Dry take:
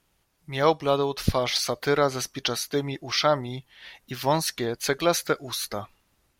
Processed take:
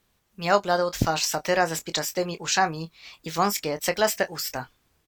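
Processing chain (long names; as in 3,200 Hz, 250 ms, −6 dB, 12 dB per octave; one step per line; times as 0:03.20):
double-tracking delay 31 ms −11 dB
speed change +26%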